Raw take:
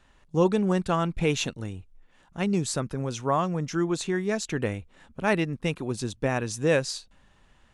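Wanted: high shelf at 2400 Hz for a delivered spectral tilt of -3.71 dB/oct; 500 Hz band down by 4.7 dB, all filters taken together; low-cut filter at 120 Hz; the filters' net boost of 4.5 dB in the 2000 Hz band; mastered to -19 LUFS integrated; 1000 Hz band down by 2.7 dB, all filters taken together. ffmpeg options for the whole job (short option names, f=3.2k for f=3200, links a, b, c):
-af "highpass=120,equalizer=f=500:t=o:g=-5.5,equalizer=f=1k:t=o:g=-4,equalizer=f=2k:t=o:g=4,highshelf=f=2.4k:g=6,volume=8.5dB"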